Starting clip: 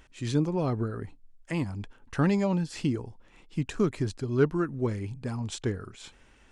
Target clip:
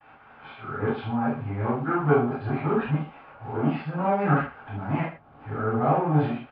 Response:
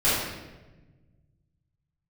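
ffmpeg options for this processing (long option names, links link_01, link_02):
-filter_complex "[0:a]areverse,aresample=11025,asoftclip=type=tanh:threshold=-21dB,aresample=44100,acrusher=bits=8:mix=0:aa=0.000001,asplit=2[link_01][link_02];[link_02]aeval=exprs='0.0188*(abs(mod(val(0)/0.0188+3,4)-2)-1)':channel_layout=same,volume=-9dB[link_03];[link_01][link_03]amix=inputs=2:normalize=0,agate=range=-33dB:threshold=-49dB:ratio=3:detection=peak,highpass=190,equalizer=frequency=200:width_type=q:width=4:gain=-6,equalizer=frequency=330:width_type=q:width=4:gain=-8,equalizer=frequency=500:width_type=q:width=4:gain=-8,equalizer=frequency=800:width_type=q:width=4:gain=8,equalizer=frequency=1300:width_type=q:width=4:gain=4,equalizer=frequency=1900:width_type=q:width=4:gain=-7,lowpass=frequency=2100:width=0.5412,lowpass=frequency=2100:width=1.3066,aecho=1:1:78:0.282[link_04];[1:a]atrim=start_sample=2205,atrim=end_sample=3969[link_05];[link_04][link_05]afir=irnorm=-1:irlink=0,volume=-4dB"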